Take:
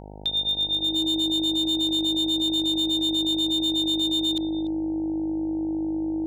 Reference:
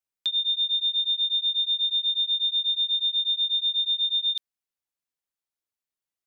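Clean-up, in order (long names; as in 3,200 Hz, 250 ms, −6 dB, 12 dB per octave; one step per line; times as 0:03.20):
clipped peaks rebuilt −19.5 dBFS
hum removal 50.8 Hz, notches 18
notch filter 320 Hz, Q 30
echo removal 291 ms −19 dB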